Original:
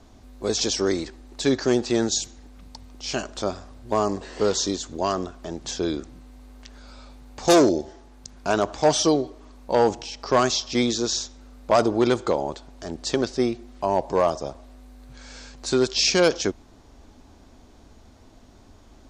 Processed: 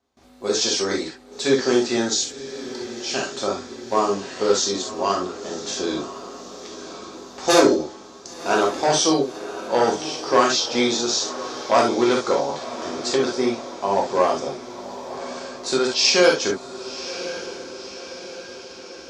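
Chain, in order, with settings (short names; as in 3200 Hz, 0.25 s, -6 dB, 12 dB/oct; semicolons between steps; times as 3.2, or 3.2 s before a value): HPF 410 Hz 6 dB/oct; gate with hold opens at -47 dBFS; high shelf 9000 Hz -5.5 dB; on a send: diffused feedback echo 1.058 s, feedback 57%, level -13 dB; on the sum: non-linear reverb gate 90 ms flat, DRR -2 dB; gain +1 dB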